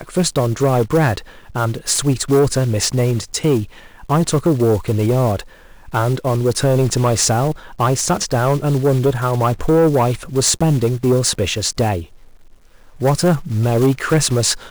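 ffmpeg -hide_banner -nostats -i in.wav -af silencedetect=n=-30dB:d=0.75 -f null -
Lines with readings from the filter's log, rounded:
silence_start: 12.05
silence_end: 13.00 | silence_duration: 0.96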